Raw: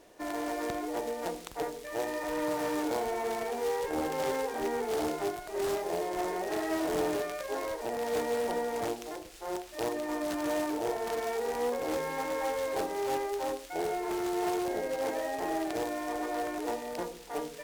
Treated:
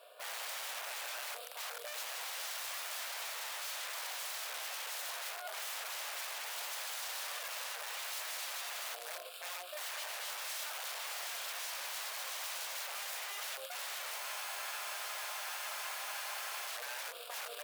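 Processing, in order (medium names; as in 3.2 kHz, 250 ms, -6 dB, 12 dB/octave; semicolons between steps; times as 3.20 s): static phaser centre 1.3 kHz, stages 8; integer overflow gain 38.5 dB; Chebyshev shaper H 7 -25 dB, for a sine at -38.5 dBFS; steep high-pass 560 Hz 36 dB/octave; peak limiter -40.5 dBFS, peak gain reduction 9.5 dB; spectral freeze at 14.22 s, 2.45 s; trim +9 dB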